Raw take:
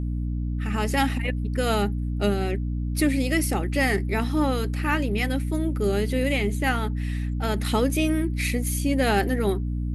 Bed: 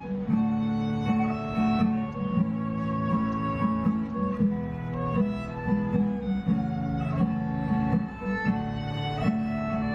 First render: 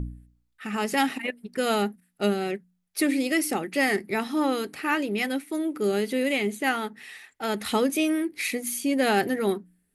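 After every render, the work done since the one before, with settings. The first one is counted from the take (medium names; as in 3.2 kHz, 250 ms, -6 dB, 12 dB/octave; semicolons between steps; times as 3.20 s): de-hum 60 Hz, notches 5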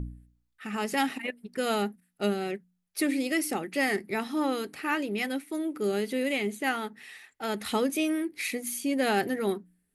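trim -3.5 dB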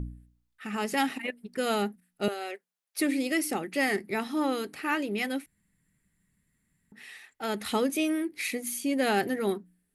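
2.28–2.99 s: high-pass 460 Hz 24 dB/octave; 5.46–6.92 s: room tone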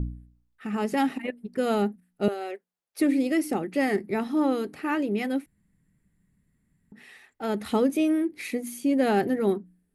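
tilt shelf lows +6 dB, about 1.1 kHz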